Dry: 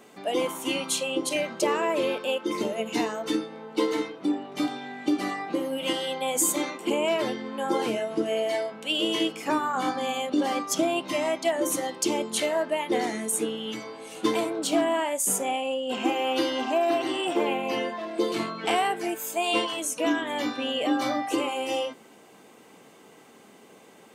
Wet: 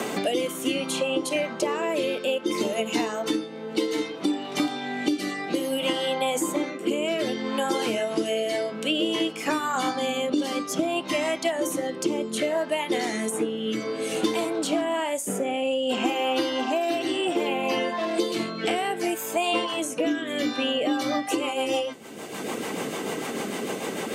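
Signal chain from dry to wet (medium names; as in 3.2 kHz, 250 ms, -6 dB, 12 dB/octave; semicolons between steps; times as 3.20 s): rotary cabinet horn 0.6 Hz, later 6.7 Hz, at 20.34 s; three bands compressed up and down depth 100%; trim +2.5 dB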